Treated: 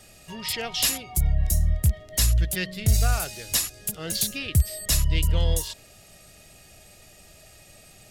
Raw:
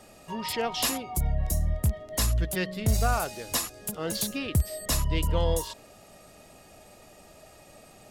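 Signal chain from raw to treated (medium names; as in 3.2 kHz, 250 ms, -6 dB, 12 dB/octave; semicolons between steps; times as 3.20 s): graphic EQ 250/500/1000 Hz -9/-6/-12 dB; trim +5.5 dB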